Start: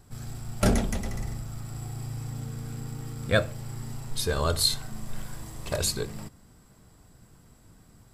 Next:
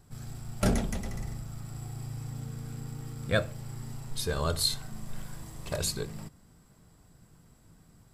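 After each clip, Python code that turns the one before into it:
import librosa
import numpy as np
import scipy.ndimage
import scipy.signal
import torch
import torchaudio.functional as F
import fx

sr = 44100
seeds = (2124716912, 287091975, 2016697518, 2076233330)

y = fx.peak_eq(x, sr, hz=160.0, db=5.5, octaves=0.27)
y = y * librosa.db_to_amplitude(-4.0)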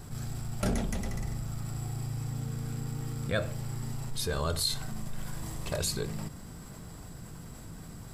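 y = fx.env_flatten(x, sr, amount_pct=50)
y = y * librosa.db_to_amplitude(-4.5)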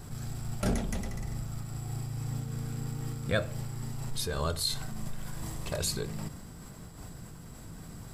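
y = fx.am_noise(x, sr, seeds[0], hz=5.7, depth_pct=55)
y = y * librosa.db_to_amplitude(2.0)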